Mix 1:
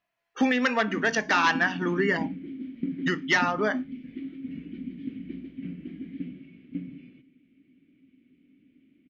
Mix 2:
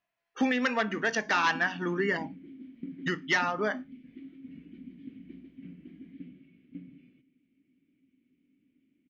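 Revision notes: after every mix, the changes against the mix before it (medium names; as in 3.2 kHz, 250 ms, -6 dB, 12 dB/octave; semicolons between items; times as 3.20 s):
speech -3.5 dB; background -9.5 dB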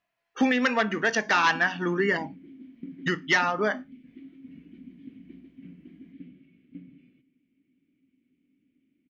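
speech +4.0 dB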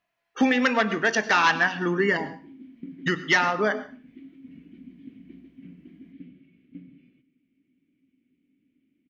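reverb: on, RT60 0.40 s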